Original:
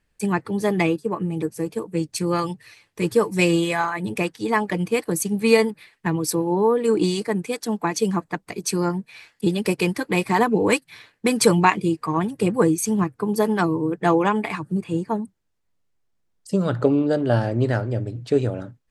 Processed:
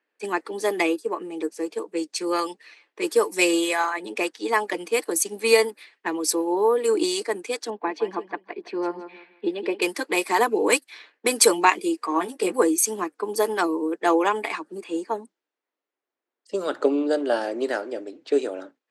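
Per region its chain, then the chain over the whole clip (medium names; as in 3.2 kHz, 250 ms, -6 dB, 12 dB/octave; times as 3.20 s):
7.70–9.82 s: distance through air 400 m + band-stop 1.3 kHz, Q 6.5 + feedback delay 164 ms, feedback 26%, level -12 dB
12.10–12.62 s: band-stop 6.9 kHz, Q 16 + doubling 16 ms -5 dB
whole clip: level-controlled noise filter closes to 2.3 kHz, open at -17 dBFS; steep high-pass 290 Hz 36 dB/octave; treble shelf 4.8 kHz +8.5 dB; trim -1 dB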